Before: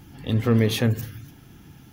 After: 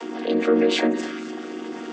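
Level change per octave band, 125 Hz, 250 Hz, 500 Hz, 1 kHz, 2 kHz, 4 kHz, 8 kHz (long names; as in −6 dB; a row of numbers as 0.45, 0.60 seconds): below −20 dB, +2.5 dB, +6.5 dB, +7.0 dB, +4.5 dB, +3.0 dB, −1.5 dB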